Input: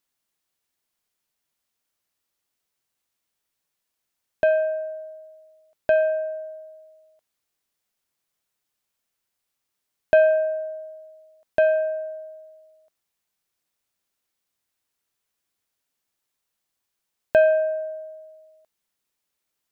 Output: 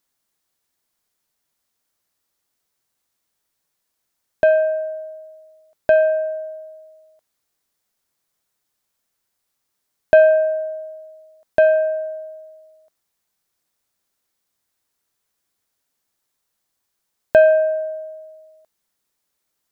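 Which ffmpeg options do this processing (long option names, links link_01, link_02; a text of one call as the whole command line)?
ffmpeg -i in.wav -af "equalizer=frequency=2700:width=2:gain=-4,volume=5dB" out.wav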